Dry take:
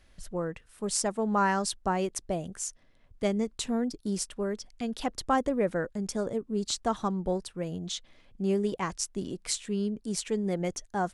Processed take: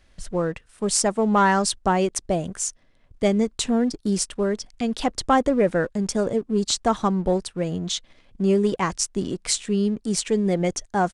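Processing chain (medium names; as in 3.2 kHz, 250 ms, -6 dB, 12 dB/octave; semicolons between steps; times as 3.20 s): waveshaping leveller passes 1; resampled via 22.05 kHz; trim +4.5 dB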